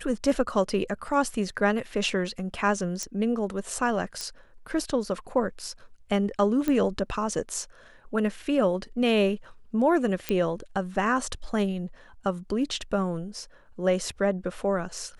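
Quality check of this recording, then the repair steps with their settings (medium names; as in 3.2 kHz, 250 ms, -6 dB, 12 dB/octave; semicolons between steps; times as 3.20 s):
3.03 s: pop -17 dBFS
4.21 s: pop -17 dBFS
6.68 s: pop -14 dBFS
10.29 s: pop -11 dBFS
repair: de-click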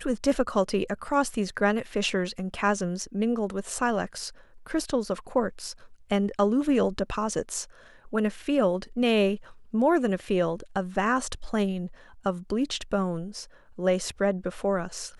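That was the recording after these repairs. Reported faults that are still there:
nothing left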